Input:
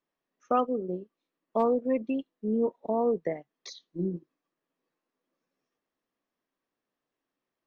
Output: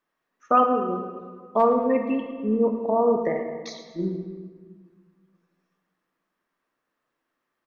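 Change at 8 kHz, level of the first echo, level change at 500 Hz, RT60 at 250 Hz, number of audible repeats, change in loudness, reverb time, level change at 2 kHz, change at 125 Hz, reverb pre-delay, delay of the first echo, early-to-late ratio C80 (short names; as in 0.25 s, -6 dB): n/a, -13.0 dB, +6.0 dB, 2.1 s, 1, +6.0 dB, 1.7 s, +9.5 dB, +4.0 dB, 6 ms, 0.11 s, 6.5 dB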